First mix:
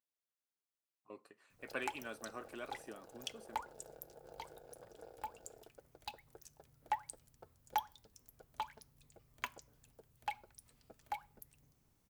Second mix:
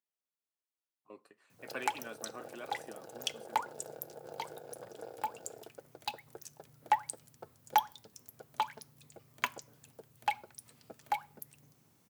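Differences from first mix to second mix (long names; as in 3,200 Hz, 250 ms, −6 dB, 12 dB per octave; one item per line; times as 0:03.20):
background +8.5 dB
master: add high-pass filter 110 Hz 24 dB per octave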